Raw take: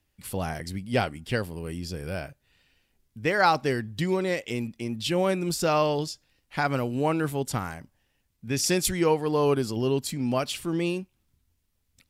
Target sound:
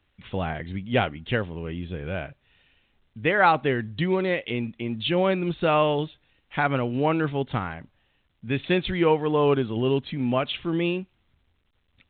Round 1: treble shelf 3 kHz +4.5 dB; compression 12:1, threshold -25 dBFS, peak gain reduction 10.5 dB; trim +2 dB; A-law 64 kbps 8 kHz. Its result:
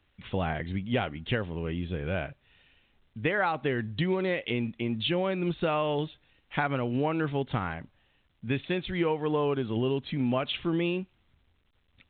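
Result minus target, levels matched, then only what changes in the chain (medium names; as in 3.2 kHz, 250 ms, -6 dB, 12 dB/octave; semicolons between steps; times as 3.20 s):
compression: peak gain reduction +10.5 dB
remove: compression 12:1, threshold -25 dBFS, peak gain reduction 10.5 dB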